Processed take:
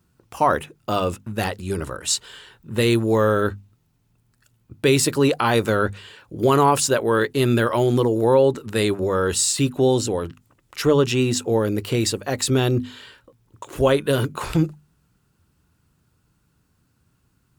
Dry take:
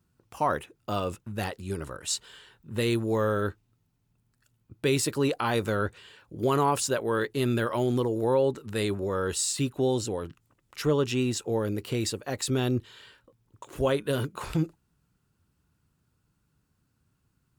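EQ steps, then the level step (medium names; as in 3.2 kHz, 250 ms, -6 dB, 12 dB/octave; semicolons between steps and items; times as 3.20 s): hum notches 50/100/150/200/250 Hz; +8.0 dB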